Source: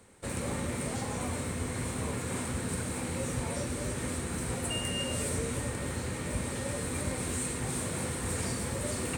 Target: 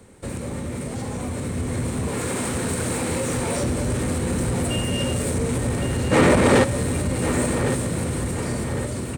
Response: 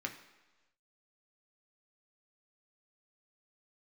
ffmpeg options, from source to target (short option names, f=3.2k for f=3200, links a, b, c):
-filter_complex "[0:a]asettb=1/sr,asplit=3[a][b][c];[a]atrim=end=2.084[d];[b]atrim=start=2.08:end=3.63,asetpts=PTS-STARTPTS,afade=t=in:d=0.004:c=qsin,afade=t=out:st=1.546:d=0.004:c=qsin,lowshelf=f=250:g=-11.5[e];[c]atrim=start=3.626[f];[d][e]acrossfade=d=0.004:c1=hsin:c2=qsin[g];[g][f]acrossfade=d=0.004:c1=qsin:c2=hsin,acrossover=split=560|2700[h][i][j];[h]acontrast=62[k];[k][i][j]amix=inputs=3:normalize=0,alimiter=level_in=1.5dB:limit=-24dB:level=0:latency=1:release=180,volume=-1.5dB,dynaudnorm=f=390:g=9:m=8dB,asoftclip=type=tanh:threshold=-23.5dB,asplit=3[l][m][n];[l]afade=t=out:st=6.11:d=0.02[o];[m]asplit=2[p][q];[q]highpass=f=720:p=1,volume=26dB,asoftclip=type=tanh:threshold=-4.5dB[r];[p][r]amix=inputs=2:normalize=0,lowpass=f=1.5k:p=1,volume=-6dB,afade=t=in:st=6.11:d=0.02,afade=t=out:st=6.63:d=0.02[s];[n]afade=t=in:st=6.63:d=0.02[t];[o][s][t]amix=inputs=3:normalize=0,asplit=2[u][v];[v]adelay=1108,lowpass=f=4k:p=1,volume=-9dB,asplit=2[w][x];[x]adelay=1108,lowpass=f=4k:p=1,volume=0.48,asplit=2[y][z];[z]adelay=1108,lowpass=f=4k:p=1,volume=0.48,asplit=2[aa][ab];[ab]adelay=1108,lowpass=f=4k:p=1,volume=0.48,asplit=2[ac][ad];[ad]adelay=1108,lowpass=f=4k:p=1,volume=0.48[ae];[u][w][y][aa][ac][ae]amix=inputs=6:normalize=0,volume=5dB"